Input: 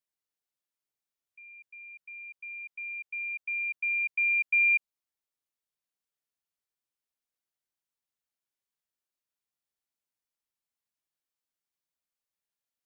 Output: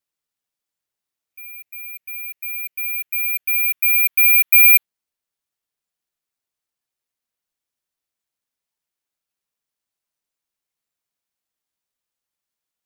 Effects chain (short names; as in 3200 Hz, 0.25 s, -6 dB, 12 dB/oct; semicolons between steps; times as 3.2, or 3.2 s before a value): careless resampling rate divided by 3×, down none, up zero stuff; spectral noise reduction 8 dB; gain +8.5 dB